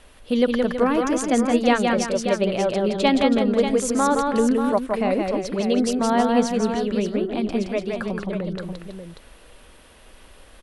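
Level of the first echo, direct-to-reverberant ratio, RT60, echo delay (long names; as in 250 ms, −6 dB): −3.5 dB, no reverb audible, no reverb audible, 170 ms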